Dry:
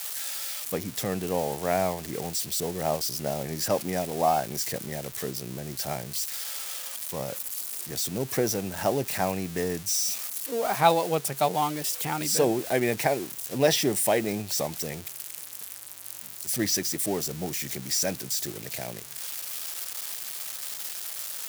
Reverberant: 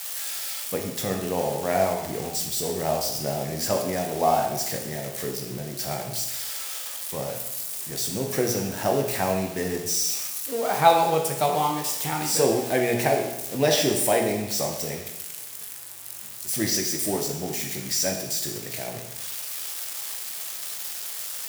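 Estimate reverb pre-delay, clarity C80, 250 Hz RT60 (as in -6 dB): 17 ms, 7.5 dB, 0.95 s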